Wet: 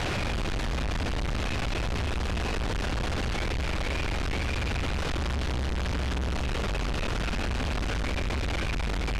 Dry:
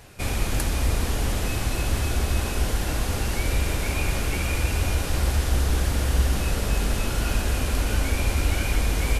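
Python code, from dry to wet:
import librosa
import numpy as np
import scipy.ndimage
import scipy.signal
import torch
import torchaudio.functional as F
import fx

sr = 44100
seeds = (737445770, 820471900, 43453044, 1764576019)

y = np.sign(x) * np.sqrt(np.mean(np.square(x)))
y = scipy.signal.sosfilt(scipy.signal.butter(2, 3900.0, 'lowpass', fs=sr, output='sos'), y)
y = y * 10.0 ** (-5.0 / 20.0)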